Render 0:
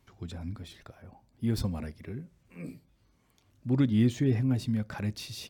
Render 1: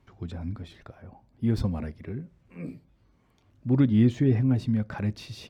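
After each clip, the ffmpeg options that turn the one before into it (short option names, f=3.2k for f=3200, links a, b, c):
-af "lowpass=f=2k:p=1,volume=4dB"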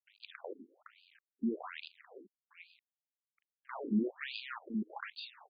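-af "equalizer=f=125:t=o:w=1:g=-3,equalizer=f=250:t=o:w=1:g=-5,equalizer=f=500:t=o:w=1:g=-6,equalizer=f=4k:t=o:w=1:g=6,acrusher=bits=6:dc=4:mix=0:aa=0.000001,afftfilt=real='re*between(b*sr/1024,290*pow(3500/290,0.5+0.5*sin(2*PI*1.2*pts/sr))/1.41,290*pow(3500/290,0.5+0.5*sin(2*PI*1.2*pts/sr))*1.41)':imag='im*between(b*sr/1024,290*pow(3500/290,0.5+0.5*sin(2*PI*1.2*pts/sr))/1.41,290*pow(3500/290,0.5+0.5*sin(2*PI*1.2*pts/sr))*1.41)':win_size=1024:overlap=0.75,volume=1dB"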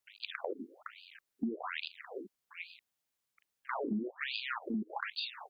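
-af "acompressor=threshold=-43dB:ratio=8,volume=10dB"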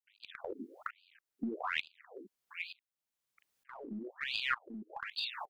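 -filter_complex "[0:a]asplit=2[a][b];[b]aeval=exprs='clip(val(0),-1,0.0178)':c=same,volume=-10dB[c];[a][c]amix=inputs=2:normalize=0,aeval=exprs='val(0)*pow(10,-22*if(lt(mod(-1.1*n/s,1),2*abs(-1.1)/1000),1-mod(-1.1*n/s,1)/(2*abs(-1.1)/1000),(mod(-1.1*n/s,1)-2*abs(-1.1)/1000)/(1-2*abs(-1.1)/1000))/20)':c=same,volume=4.5dB"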